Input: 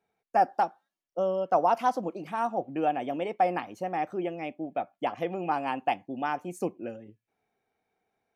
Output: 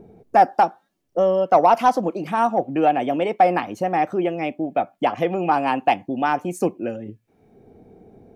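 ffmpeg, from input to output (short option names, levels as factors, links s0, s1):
-filter_complex "[0:a]aeval=exprs='0.266*(cos(1*acos(clip(val(0)/0.266,-1,1)))-cos(1*PI/2))+0.00841*(cos(5*acos(clip(val(0)/0.266,-1,1)))-cos(5*PI/2))':c=same,acrossover=split=460[s0][s1];[s0]acompressor=mode=upward:threshold=0.0224:ratio=2.5[s2];[s2][s1]amix=inputs=2:normalize=0,volume=2.66"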